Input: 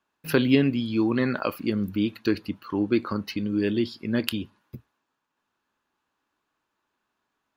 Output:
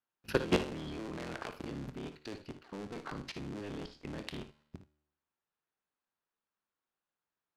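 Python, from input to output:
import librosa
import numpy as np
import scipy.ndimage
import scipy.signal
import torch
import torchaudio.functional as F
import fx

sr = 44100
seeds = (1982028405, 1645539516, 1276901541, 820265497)

y = fx.cycle_switch(x, sr, every=3, mode='inverted')
y = scipy.signal.sosfilt(scipy.signal.butter(2, 7500.0, 'lowpass', fs=sr, output='sos'), y)
y = fx.level_steps(y, sr, step_db=18)
y = fx.comb_fb(y, sr, f0_hz=75.0, decay_s=0.79, harmonics='all', damping=0.0, mix_pct=40)
y = fx.room_early_taps(y, sr, ms=(24, 57, 78), db=(-18.0, -12.0, -15.0))
y = y * librosa.db_to_amplitude(-2.0)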